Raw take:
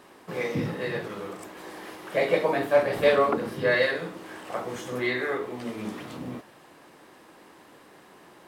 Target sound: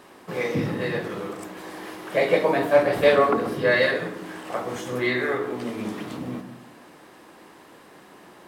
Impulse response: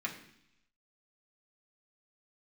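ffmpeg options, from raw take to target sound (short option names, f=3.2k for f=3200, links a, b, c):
-filter_complex "[0:a]asplit=2[a][b];[1:a]atrim=start_sample=2205,lowpass=1.2k,adelay=127[c];[b][c]afir=irnorm=-1:irlink=0,volume=-9.5dB[d];[a][d]amix=inputs=2:normalize=0,volume=3dB"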